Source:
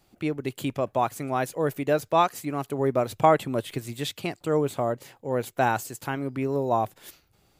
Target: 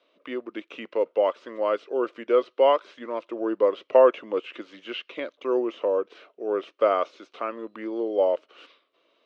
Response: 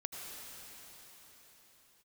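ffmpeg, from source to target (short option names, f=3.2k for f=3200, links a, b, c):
-filter_complex "[0:a]asetrate=36162,aresample=44100,acrossover=split=2800[a][b];[b]acompressor=threshold=-44dB:ratio=4:attack=1:release=60[c];[a][c]amix=inputs=2:normalize=0,highpass=f=350:w=0.5412,highpass=f=350:w=1.3066,equalizer=f=540:t=q:w=4:g=5,equalizer=f=800:t=q:w=4:g=-9,equalizer=f=1.2k:t=q:w=4:g=4,equalizer=f=1.8k:t=q:w=4:g=-7,equalizer=f=2.9k:t=q:w=4:g=3,lowpass=f=3.8k:w=0.5412,lowpass=f=3.8k:w=1.3066,volume=1.5dB"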